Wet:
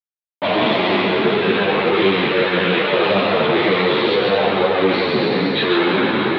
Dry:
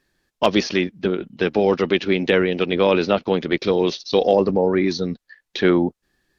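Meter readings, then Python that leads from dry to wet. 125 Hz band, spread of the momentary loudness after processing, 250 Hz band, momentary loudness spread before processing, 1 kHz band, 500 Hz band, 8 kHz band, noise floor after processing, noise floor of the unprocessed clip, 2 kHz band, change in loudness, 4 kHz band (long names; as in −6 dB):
+1.5 dB, 2 LU, +1.5 dB, 7 LU, +7.0 dB, +2.5 dB, can't be measured, below −85 dBFS, −80 dBFS, +8.0 dB, +3.5 dB, +7.5 dB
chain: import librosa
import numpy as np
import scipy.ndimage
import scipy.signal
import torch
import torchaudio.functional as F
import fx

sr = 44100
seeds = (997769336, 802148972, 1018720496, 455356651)

y = fx.spec_trails(x, sr, decay_s=2.43)
y = fx.fuzz(y, sr, gain_db=33.0, gate_db=-38.0)
y = scipy.signal.sosfilt(scipy.signal.cheby1(5, 1.0, [100.0, 3900.0], 'bandpass', fs=sr, output='sos'), y)
y = y + 10.0 ** (-3.5 / 20.0) * np.pad(y, (int(142 * sr / 1000.0), 0))[:len(y)]
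y = fx.ensemble(y, sr)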